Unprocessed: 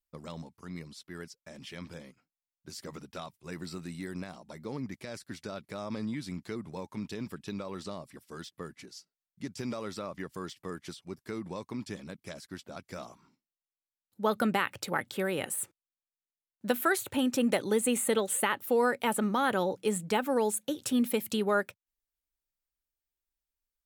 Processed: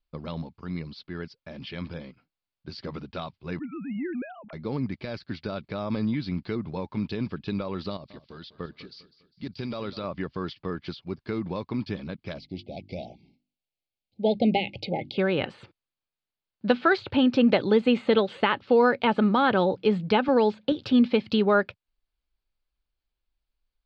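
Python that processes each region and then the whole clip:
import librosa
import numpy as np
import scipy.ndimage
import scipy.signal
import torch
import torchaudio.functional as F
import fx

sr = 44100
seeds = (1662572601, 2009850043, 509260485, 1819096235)

y = fx.chain(x, sr, fx.sine_speech(),
    fx.transient(attack_db=-6, sustain_db=3), at=(3.59, 4.53))
y = fx.chain(y, sr, fx.peak_eq(hz=4000.0, db=6.5, octaves=0.83),
    fx.level_steps(step_db=10),
    fx.echo_feedback(ms=201, feedback_pct=43, wet_db=-16.5), at=(7.9, 10.05))
y = fx.chain(y, sr, fx.cheby1_bandstop(low_hz=820.0, high_hz=2100.0, order=5),
    fx.hum_notches(base_hz=50, count=7), at=(12.38, 15.18))
y = fx.chain(y, sr, fx.lowpass(hz=6100.0, slope=12),
    fx.band_squash(depth_pct=40), at=(20.28, 20.72))
y = scipy.signal.sosfilt(scipy.signal.cheby1(5, 1.0, 4700.0, 'lowpass', fs=sr, output='sos'), y)
y = fx.low_shelf(y, sr, hz=100.0, db=9.0)
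y = fx.notch(y, sr, hz=1900.0, q=13.0)
y = y * 10.0 ** (6.5 / 20.0)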